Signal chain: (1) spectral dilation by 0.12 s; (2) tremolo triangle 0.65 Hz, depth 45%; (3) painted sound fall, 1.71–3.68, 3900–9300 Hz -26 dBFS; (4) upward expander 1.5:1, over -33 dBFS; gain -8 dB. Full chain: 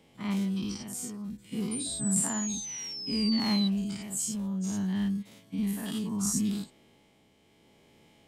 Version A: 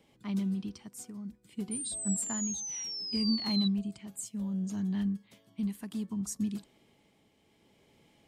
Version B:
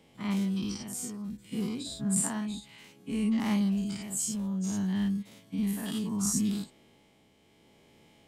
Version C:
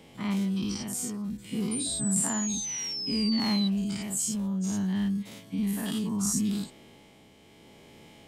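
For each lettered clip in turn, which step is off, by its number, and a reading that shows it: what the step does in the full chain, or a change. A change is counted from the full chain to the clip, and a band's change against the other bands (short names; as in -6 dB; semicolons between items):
1, 2 kHz band -4.5 dB; 3, 4 kHz band -6.5 dB; 4, momentary loudness spread change -2 LU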